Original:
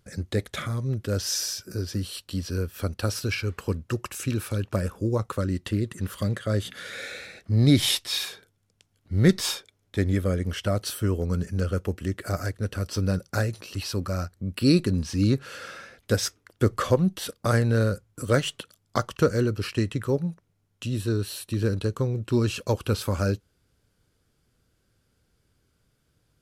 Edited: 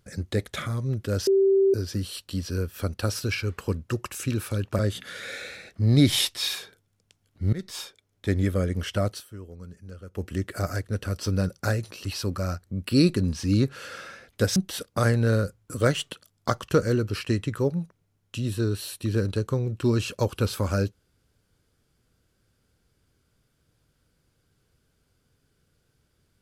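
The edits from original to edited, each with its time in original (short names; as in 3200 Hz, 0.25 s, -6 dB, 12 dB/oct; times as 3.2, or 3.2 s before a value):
1.27–1.74 bleep 389 Hz -16 dBFS
4.79–6.49 cut
9.23–10.03 fade in, from -21.5 dB
10.77–11.96 dip -16 dB, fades 0.16 s
16.26–17.04 cut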